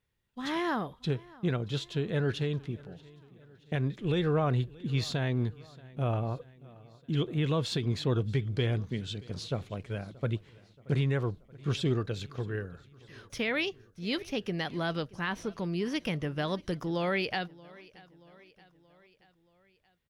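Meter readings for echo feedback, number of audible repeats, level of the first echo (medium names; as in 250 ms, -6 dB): 56%, 3, -22.5 dB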